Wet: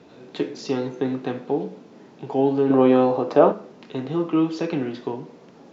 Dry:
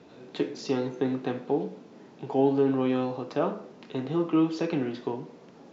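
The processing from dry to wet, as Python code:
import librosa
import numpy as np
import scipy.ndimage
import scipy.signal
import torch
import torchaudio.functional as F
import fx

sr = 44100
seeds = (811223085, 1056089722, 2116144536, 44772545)

y = fx.peak_eq(x, sr, hz=590.0, db=10.5, octaves=2.6, at=(2.7, 3.52))
y = F.gain(torch.from_numpy(y), 3.0).numpy()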